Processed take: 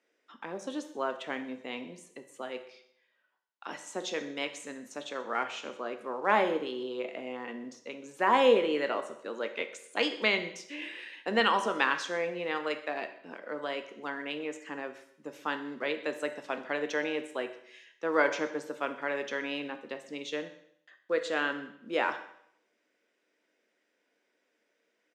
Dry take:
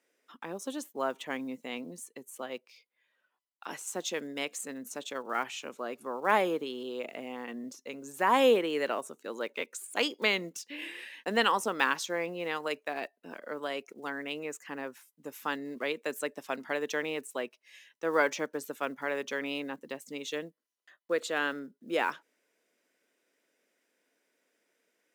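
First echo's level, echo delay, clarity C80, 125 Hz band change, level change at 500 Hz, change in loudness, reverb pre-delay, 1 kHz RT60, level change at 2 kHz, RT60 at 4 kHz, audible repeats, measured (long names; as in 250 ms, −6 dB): −20.5 dB, 126 ms, 13.5 dB, −1.0 dB, +1.0 dB, +1.0 dB, 10 ms, 0.70 s, +1.0 dB, 0.65 s, 1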